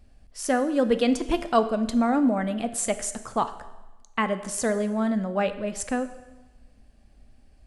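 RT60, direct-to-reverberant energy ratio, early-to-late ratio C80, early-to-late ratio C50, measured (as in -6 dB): 1.1 s, 10.5 dB, 15.0 dB, 13.0 dB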